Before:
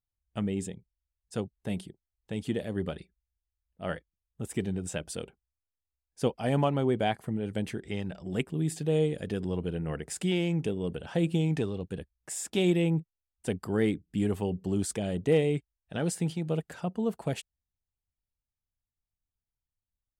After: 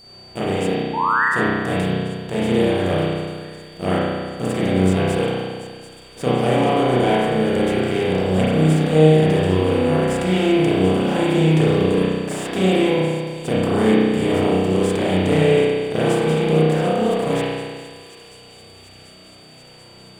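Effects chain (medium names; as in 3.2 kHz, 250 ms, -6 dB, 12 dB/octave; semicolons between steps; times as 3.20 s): spectral levelling over time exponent 0.4; in parallel at -7 dB: small samples zeroed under -31 dBFS; on the sum: whistle 4.6 kHz -38 dBFS; painted sound rise, 0.93–1.25 s, 850–2000 Hz -20 dBFS; on a send: feedback echo behind a high-pass 738 ms, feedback 77%, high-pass 4.1 kHz, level -11.5 dB; on the sum: spring tank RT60 1.7 s, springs 32 ms, chirp 25 ms, DRR -9.5 dB; trim -6.5 dB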